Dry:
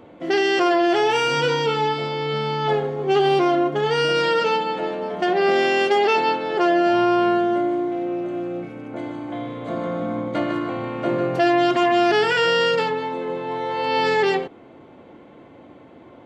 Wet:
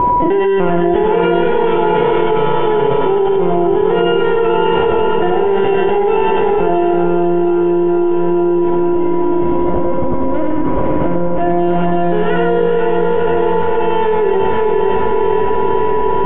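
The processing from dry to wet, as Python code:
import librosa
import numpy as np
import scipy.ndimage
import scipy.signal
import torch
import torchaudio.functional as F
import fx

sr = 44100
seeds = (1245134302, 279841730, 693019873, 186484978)

p1 = scipy.signal.sosfilt(scipy.signal.butter(2, 130.0, 'highpass', fs=sr, output='sos'), x)
p2 = fx.lpc_vocoder(p1, sr, seeds[0], excitation='pitch_kept', order=16)
p3 = fx.low_shelf(p2, sr, hz=370.0, db=-6.5)
p4 = p3 + fx.echo_diffused(p3, sr, ms=514, feedback_pct=67, wet_db=-4.0, dry=0)
p5 = p4 + 10.0 ** (-31.0 / 20.0) * np.sin(2.0 * np.pi * 980.0 * np.arange(len(p4)) / sr)
p6 = scipy.signal.sosfilt(scipy.signal.butter(4, 3100.0, 'lowpass', fs=sr, output='sos'), p5)
p7 = fx.tilt_shelf(p6, sr, db=8.5, hz=650.0)
p8 = fx.notch(p7, sr, hz=1200.0, q=20.0)
p9 = p8 + 10.0 ** (-3.5 / 20.0) * np.pad(p8, (int(98 * sr / 1000.0), 0))[:len(p8)]
p10 = fx.env_flatten(p9, sr, amount_pct=100)
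y = p10 * 10.0 ** (-3.0 / 20.0)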